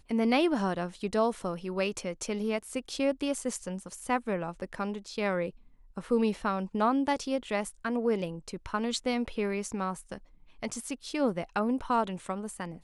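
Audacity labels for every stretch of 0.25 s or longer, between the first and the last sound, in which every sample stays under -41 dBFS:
5.500000	5.970000	silence
10.180000	10.630000	silence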